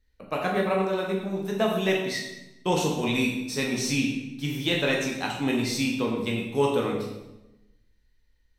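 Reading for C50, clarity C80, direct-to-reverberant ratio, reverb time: 3.0 dB, 5.5 dB, -2.0 dB, 0.95 s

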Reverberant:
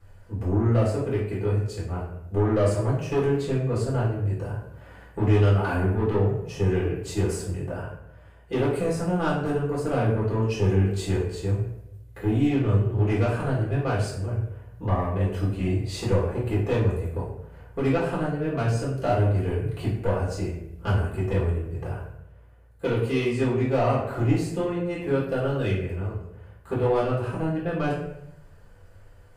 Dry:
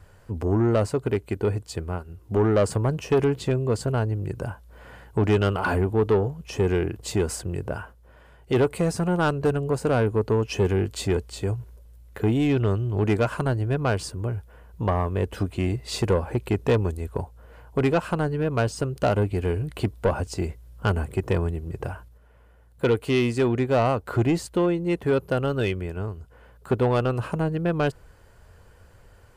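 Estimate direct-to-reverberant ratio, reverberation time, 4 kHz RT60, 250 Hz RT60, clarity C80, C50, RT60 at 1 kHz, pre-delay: -7.5 dB, 0.80 s, 0.50 s, 0.90 s, 6.5 dB, 3.0 dB, 0.70 s, 4 ms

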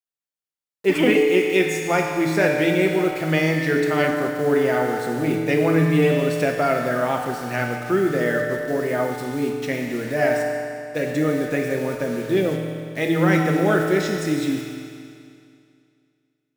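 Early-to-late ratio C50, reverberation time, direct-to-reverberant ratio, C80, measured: 3.0 dB, 2.4 s, 1.0 dB, 4.0 dB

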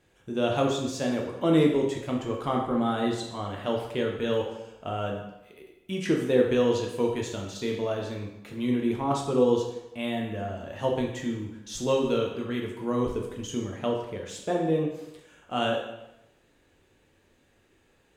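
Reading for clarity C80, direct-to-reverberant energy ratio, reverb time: 7.0 dB, -0.5 dB, 0.90 s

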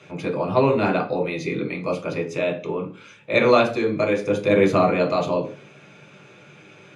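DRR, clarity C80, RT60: 0.0 dB, 17.5 dB, 0.40 s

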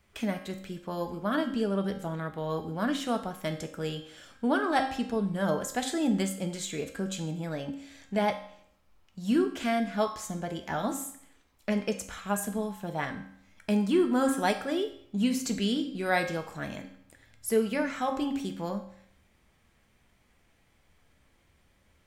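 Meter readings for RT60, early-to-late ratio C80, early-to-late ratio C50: 0.65 s, 12.5 dB, 9.5 dB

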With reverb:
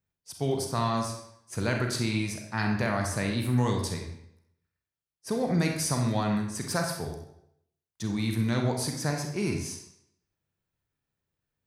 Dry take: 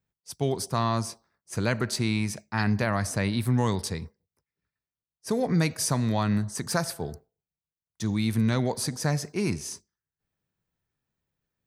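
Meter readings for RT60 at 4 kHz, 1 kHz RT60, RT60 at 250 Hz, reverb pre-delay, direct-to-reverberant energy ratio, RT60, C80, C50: 0.65 s, 0.70 s, 0.70 s, 33 ms, 2.0 dB, 0.75 s, 7.5 dB, 5.5 dB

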